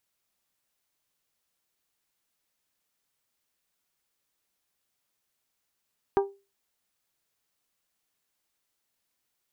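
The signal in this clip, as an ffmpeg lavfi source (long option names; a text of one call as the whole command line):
ffmpeg -f lavfi -i "aevalsrc='0.141*pow(10,-3*t/0.29)*sin(2*PI*396*t)+0.0794*pow(10,-3*t/0.179)*sin(2*PI*792*t)+0.0447*pow(10,-3*t/0.157)*sin(2*PI*950.4*t)+0.0251*pow(10,-3*t/0.134)*sin(2*PI*1188*t)+0.0141*pow(10,-3*t/0.11)*sin(2*PI*1584*t)':duration=0.89:sample_rate=44100" out.wav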